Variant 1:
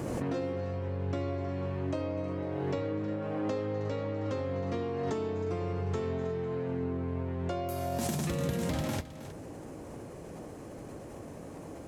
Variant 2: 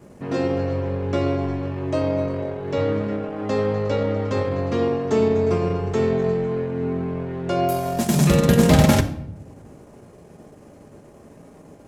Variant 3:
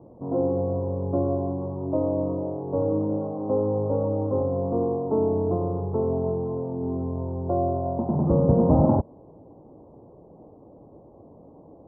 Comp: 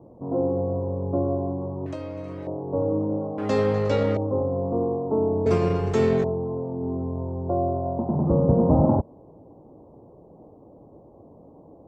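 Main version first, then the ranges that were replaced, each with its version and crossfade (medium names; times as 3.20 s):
3
1.86–2.47 s: from 1
3.38–4.17 s: from 2
5.46–6.24 s: from 2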